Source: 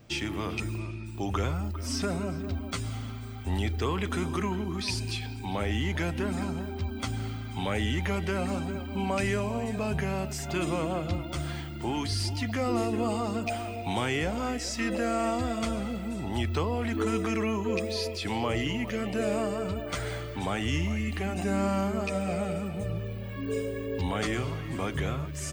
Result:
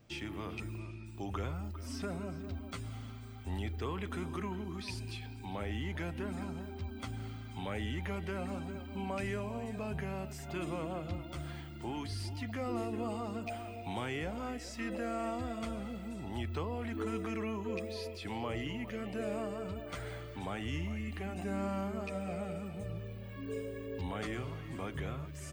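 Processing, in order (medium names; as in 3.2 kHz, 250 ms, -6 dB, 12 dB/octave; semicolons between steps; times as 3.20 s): dynamic bell 6.1 kHz, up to -6 dB, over -51 dBFS, Q 0.88; trim -8.5 dB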